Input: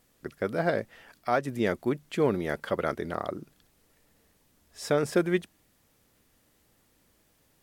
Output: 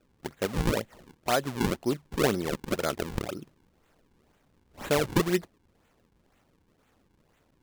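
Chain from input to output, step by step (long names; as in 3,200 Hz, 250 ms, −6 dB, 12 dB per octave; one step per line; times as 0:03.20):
sample-and-hold swept by an LFO 40×, swing 160% 2 Hz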